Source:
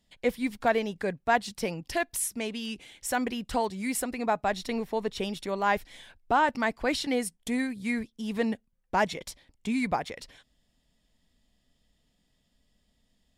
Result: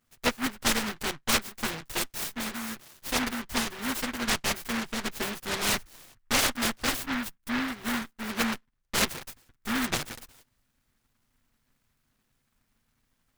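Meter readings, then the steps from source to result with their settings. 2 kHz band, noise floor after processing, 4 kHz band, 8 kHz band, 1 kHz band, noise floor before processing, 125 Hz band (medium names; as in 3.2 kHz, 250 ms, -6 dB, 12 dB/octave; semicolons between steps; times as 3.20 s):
+1.5 dB, -75 dBFS, +8.0 dB, +6.0 dB, -5.0 dB, -73 dBFS, +1.0 dB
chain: comb filter that takes the minimum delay 8.1 ms; spectral selection erased 7.03–7.68 s, 290–4800 Hz; delay time shaken by noise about 1.4 kHz, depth 0.45 ms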